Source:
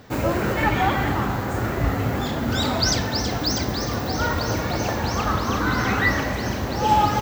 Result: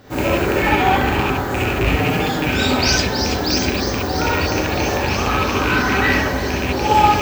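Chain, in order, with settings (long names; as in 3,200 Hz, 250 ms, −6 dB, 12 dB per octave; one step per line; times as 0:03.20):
loose part that buzzes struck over −21 dBFS, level −11 dBFS
0:01.91–0:02.48: comb filter 6.5 ms, depth 69%
reverb whose tail is shaped and stops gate 90 ms rising, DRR −4.5 dB
level −1 dB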